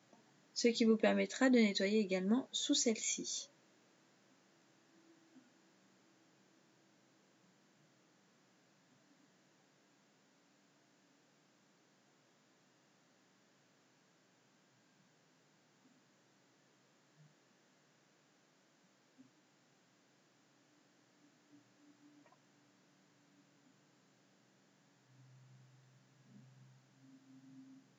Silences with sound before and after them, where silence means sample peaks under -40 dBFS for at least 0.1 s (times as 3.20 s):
2.41–2.54 s